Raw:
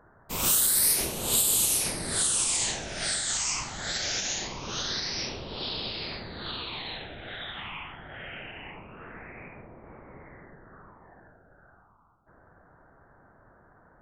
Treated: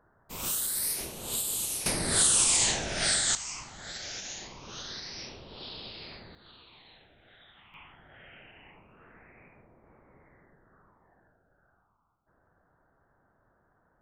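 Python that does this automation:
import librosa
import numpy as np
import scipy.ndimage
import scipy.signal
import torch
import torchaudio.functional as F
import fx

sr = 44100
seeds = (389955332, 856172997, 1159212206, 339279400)

y = fx.gain(x, sr, db=fx.steps((0.0, -8.0), (1.86, 3.0), (3.35, -9.0), (6.35, -19.0), (7.74, -11.5)))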